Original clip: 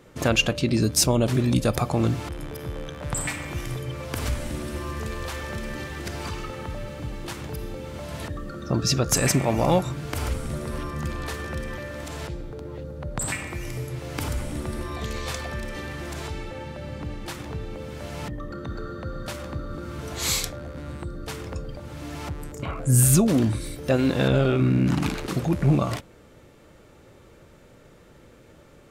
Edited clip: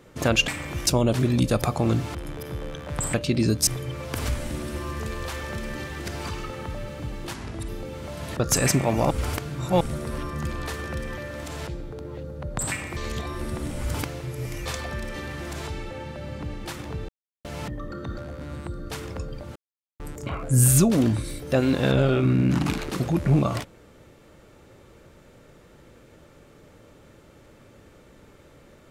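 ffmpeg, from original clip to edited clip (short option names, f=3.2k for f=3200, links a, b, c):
-filter_complex "[0:a]asplit=17[a][b][c][d][e][f][g][h][i][j][k][l][m][n][o][p][q];[a]atrim=end=0.482[r];[b]atrim=start=3.278:end=3.672[s];[c]atrim=start=1.008:end=3.282[t];[d]atrim=start=0.478:end=1.012[u];[e]atrim=start=3.668:end=7.344[v];[f]atrim=start=7.34:end=7.6,asetpts=PTS-STARTPTS,asetrate=33075,aresample=44100[w];[g]atrim=start=7.596:end=8.312[x];[h]atrim=start=8.998:end=9.712[y];[i]atrim=start=9.708:end=10.412,asetpts=PTS-STARTPTS,areverse[z];[j]atrim=start=10.408:end=13.572[aa];[k]atrim=start=13.568:end=15.262,asetpts=PTS-STARTPTS,areverse[ab];[l]atrim=start=15.258:end=17.69,asetpts=PTS-STARTPTS,afade=t=out:st=2.428:d=0.004:c=hsin[ac];[m]atrim=start=17.69:end=18.05,asetpts=PTS-STARTPTS,volume=0[ad];[n]atrim=start=18.05:end=18.782,asetpts=PTS-STARTPTS,afade=t=in:d=0.004:c=hsin[ae];[o]atrim=start=20.538:end=21.92,asetpts=PTS-STARTPTS,afade=t=out:st=1.378:d=0.004:c=hsin[af];[p]atrim=start=21.92:end=22.36,asetpts=PTS-STARTPTS,volume=0[ag];[q]atrim=start=22.36,asetpts=PTS-STARTPTS,afade=t=in:d=0.004:c=hsin[ah];[r][s]acrossfade=d=0.004:c1=hsin:c2=hsin[ai];[ai][t]acrossfade=d=0.004:c1=hsin:c2=hsin[aj];[aj][u]acrossfade=d=0.004:c1=hsin:c2=hsin[ak];[ak][v]acrossfade=d=0.004:c1=hsin:c2=hsin[al];[al][w]acrossfade=d=0.004:c1=hsin:c2=hsin[am];[am][x]acrossfade=d=0.004:c1=hsin:c2=hsin[an];[an][y]acrossfade=d=0.004:c1=hsin:c2=hsin[ao];[ao][z]acrossfade=d=0.004:c1=hsin:c2=hsin[ap];[ap][aa]acrossfade=d=0.004:c1=hsin:c2=hsin[aq];[aq][ab]acrossfade=d=0.004:c1=hsin:c2=hsin[ar];[ac][ad][ae]concat=n=3:v=0:a=1[as];[ar][as]acrossfade=d=0.004:c1=hsin:c2=hsin[at];[af][ag][ah]concat=n=3:v=0:a=1[au];[at][au]acrossfade=d=0.004:c1=hsin:c2=hsin"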